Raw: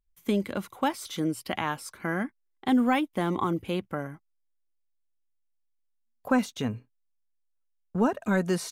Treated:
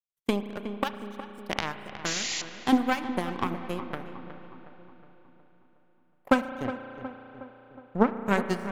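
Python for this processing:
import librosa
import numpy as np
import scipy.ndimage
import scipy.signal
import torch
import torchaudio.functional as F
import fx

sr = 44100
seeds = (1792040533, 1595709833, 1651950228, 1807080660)

p1 = fx.highpass(x, sr, hz=670.0, slope=12, at=(0.83, 1.4), fade=0.02)
p2 = fx.env_lowpass_down(p1, sr, base_hz=1600.0, full_db=-25.5, at=(6.64, 8.13))
p3 = fx.power_curve(p2, sr, exponent=2.0)
p4 = fx.transient(p3, sr, attack_db=7, sustain_db=-5)
p5 = np.clip(p4, -10.0 ** (-14.5 / 20.0), 10.0 ** (-14.5 / 20.0))
p6 = p4 + F.gain(torch.from_numpy(p5), -12.0).numpy()
p7 = fx.spec_paint(p6, sr, seeds[0], shape='noise', start_s=2.05, length_s=0.37, low_hz=1800.0, high_hz=7400.0, level_db=-32.0)
p8 = p7 + fx.echo_filtered(p7, sr, ms=365, feedback_pct=54, hz=2100.0, wet_db=-11, dry=0)
y = fx.rev_spring(p8, sr, rt60_s=4.0, pass_ms=(34,), chirp_ms=40, drr_db=9.5)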